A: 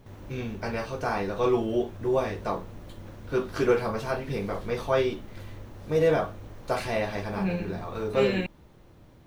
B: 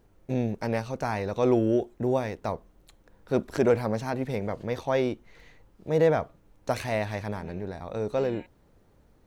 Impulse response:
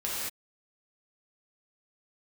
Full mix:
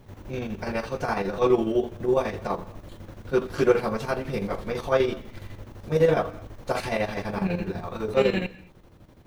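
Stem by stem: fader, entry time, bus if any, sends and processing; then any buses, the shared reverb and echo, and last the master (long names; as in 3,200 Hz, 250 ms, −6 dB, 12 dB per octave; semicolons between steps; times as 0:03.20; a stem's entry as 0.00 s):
+2.0 dB, 0.00 s, send −23 dB, square-wave tremolo 12 Hz, depth 60%, duty 65%
−7.5 dB, 0.00 s, polarity flipped, no send, no processing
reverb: on, pre-delay 3 ms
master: no processing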